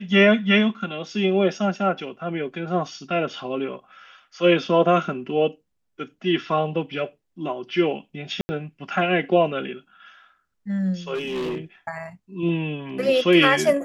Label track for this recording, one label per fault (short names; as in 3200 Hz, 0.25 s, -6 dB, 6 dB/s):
8.410000	8.490000	gap 80 ms
11.140000	11.580000	clipped -24 dBFS